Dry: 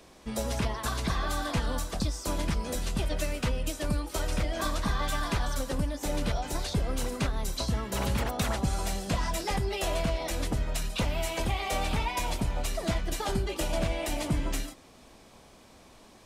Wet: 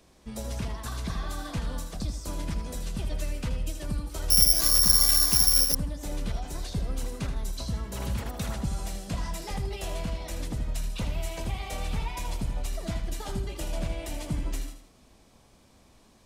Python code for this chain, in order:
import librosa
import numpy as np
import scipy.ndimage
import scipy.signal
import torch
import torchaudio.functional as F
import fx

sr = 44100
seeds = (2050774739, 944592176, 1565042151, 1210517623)

y = fx.bass_treble(x, sr, bass_db=6, treble_db=3)
y = fx.echo_feedback(y, sr, ms=79, feedback_pct=36, wet_db=-9)
y = fx.resample_bad(y, sr, factor=8, down='none', up='zero_stuff', at=(4.3, 5.75))
y = F.gain(torch.from_numpy(y), -7.5).numpy()